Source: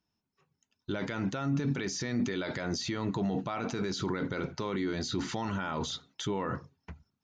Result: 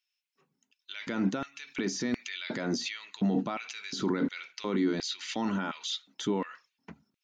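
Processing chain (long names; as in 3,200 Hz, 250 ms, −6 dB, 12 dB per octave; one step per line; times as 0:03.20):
auto-filter high-pass square 1.4 Hz 230–2,500 Hz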